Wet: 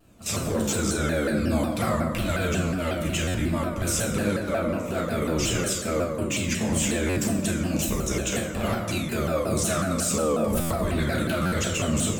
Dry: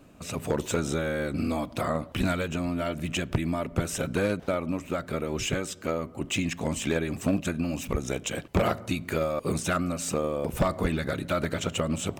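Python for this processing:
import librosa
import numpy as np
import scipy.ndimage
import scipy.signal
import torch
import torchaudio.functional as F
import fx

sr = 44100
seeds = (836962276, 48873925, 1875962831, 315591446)

p1 = fx.recorder_agc(x, sr, target_db=-25.0, rise_db_per_s=9.7, max_gain_db=30)
p2 = fx.low_shelf(p1, sr, hz=87.0, db=9.5)
p3 = 10.0 ** (-30.5 / 20.0) * np.tanh(p2 / 10.0 ** (-30.5 / 20.0))
p4 = p2 + (p3 * librosa.db_to_amplitude(-9.5))
p5 = fx.high_shelf(p4, sr, hz=4200.0, db=9.0)
p6 = fx.level_steps(p5, sr, step_db=15)
p7 = fx.doubler(p6, sr, ms=33.0, db=-10.5)
p8 = fx.rev_fdn(p7, sr, rt60_s=1.5, lf_ratio=0.8, hf_ratio=0.5, size_ms=28.0, drr_db=-3.5)
p9 = fx.buffer_glitch(p8, sr, at_s=(3.24, 7.06, 10.6, 11.42), block=512, repeats=8)
y = fx.vibrato_shape(p9, sr, shape='saw_down', rate_hz=5.5, depth_cents=160.0)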